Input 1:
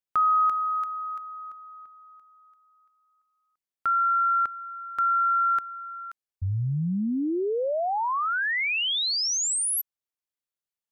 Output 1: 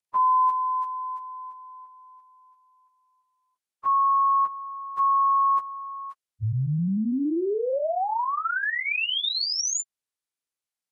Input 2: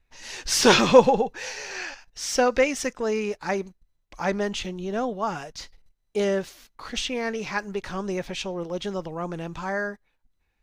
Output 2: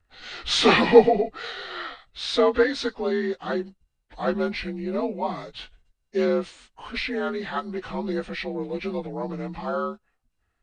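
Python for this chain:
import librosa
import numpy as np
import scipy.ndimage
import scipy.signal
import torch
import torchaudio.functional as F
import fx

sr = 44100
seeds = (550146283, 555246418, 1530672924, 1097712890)

y = fx.partial_stretch(x, sr, pct=87)
y = F.gain(torch.from_numpy(y), 2.0).numpy()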